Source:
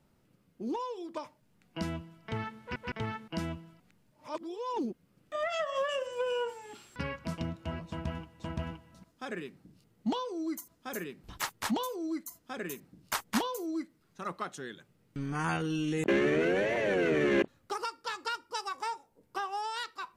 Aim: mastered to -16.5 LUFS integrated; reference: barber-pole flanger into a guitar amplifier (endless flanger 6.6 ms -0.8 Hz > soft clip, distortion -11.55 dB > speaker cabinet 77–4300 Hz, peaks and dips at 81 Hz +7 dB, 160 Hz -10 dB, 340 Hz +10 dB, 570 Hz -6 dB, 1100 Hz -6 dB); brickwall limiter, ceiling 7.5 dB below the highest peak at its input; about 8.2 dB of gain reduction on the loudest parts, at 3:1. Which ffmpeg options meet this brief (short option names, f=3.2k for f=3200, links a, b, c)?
-filter_complex "[0:a]acompressor=threshold=-34dB:ratio=3,alimiter=level_in=4.5dB:limit=-24dB:level=0:latency=1,volume=-4.5dB,asplit=2[a][b];[b]adelay=6.6,afreqshift=-0.8[c];[a][c]amix=inputs=2:normalize=1,asoftclip=threshold=-40dB,highpass=77,equalizer=f=81:t=q:w=4:g=7,equalizer=f=160:t=q:w=4:g=-10,equalizer=f=340:t=q:w=4:g=10,equalizer=f=570:t=q:w=4:g=-6,equalizer=f=1.1k:t=q:w=4:g=-6,lowpass=f=4.3k:w=0.5412,lowpass=f=4.3k:w=1.3066,volume=28.5dB"